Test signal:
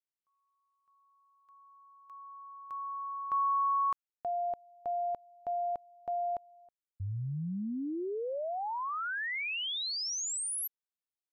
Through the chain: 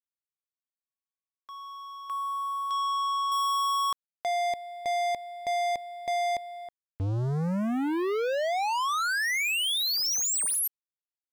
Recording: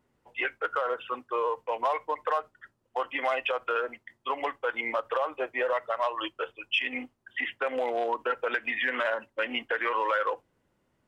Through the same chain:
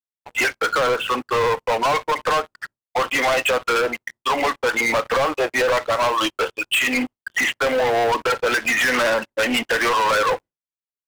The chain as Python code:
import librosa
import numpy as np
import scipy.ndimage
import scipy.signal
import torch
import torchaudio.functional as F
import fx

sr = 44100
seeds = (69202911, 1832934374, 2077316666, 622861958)

y = fx.gate_hold(x, sr, open_db=-59.0, close_db=-63.0, hold_ms=28.0, range_db=-33, attack_ms=0.64, release_ms=147.0)
y = fx.leveller(y, sr, passes=5)